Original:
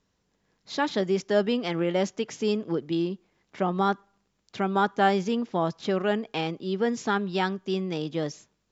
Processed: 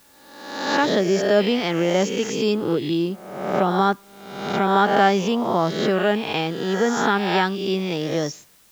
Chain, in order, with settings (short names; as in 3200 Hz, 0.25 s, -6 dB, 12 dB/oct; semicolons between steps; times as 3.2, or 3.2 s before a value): spectral swells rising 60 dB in 1.01 s; in parallel at -8.5 dB: requantised 8-bit, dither triangular; on the sum: gain +1.5 dB